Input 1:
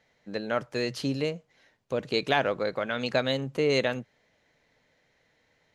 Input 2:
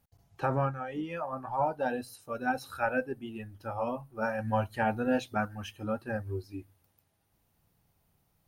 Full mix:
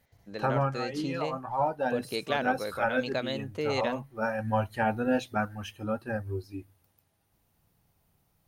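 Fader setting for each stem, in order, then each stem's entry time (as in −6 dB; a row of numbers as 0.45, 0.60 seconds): −6.0, +1.5 decibels; 0.00, 0.00 seconds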